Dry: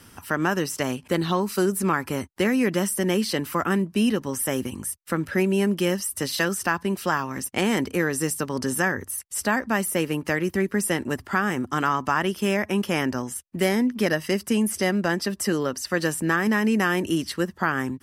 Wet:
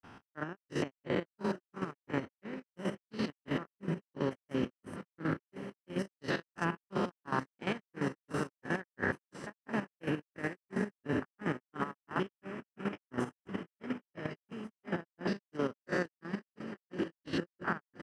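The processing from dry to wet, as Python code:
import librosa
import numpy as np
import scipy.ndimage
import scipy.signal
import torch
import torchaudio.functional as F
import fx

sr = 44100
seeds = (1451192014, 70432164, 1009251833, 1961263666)

p1 = fx.spec_steps(x, sr, hold_ms=200)
p2 = fx.over_compress(p1, sr, threshold_db=-32.0, ratio=-1.0)
p3 = p2 + fx.echo_diffused(p2, sr, ms=1160, feedback_pct=69, wet_db=-9.0, dry=0)
p4 = fx.granulator(p3, sr, seeds[0], grain_ms=225.0, per_s=2.9, spray_ms=100.0, spread_st=0)
p5 = fx.level_steps(p4, sr, step_db=11)
p6 = scipy.signal.sosfilt(scipy.signal.butter(2, 3000.0, 'lowpass', fs=sr, output='sos'), p5)
p7 = fx.low_shelf(p6, sr, hz=77.0, db=-10.5)
y = p7 * 10.0 ** (3.5 / 20.0)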